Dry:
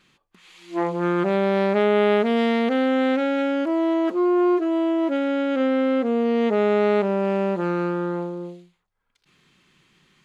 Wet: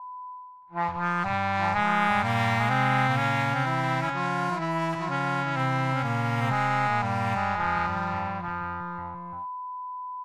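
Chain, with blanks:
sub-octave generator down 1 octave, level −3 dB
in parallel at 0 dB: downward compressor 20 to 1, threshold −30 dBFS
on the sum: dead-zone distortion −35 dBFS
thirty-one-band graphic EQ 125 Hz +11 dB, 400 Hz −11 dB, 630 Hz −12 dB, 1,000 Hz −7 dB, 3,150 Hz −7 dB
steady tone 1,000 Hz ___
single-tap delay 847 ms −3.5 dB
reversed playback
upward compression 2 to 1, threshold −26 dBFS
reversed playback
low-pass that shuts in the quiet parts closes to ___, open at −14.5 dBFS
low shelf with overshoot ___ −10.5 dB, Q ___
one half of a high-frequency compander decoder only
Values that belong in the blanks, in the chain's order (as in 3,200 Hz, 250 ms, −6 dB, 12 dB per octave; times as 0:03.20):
−47 dBFS, 690 Hz, 580 Hz, 3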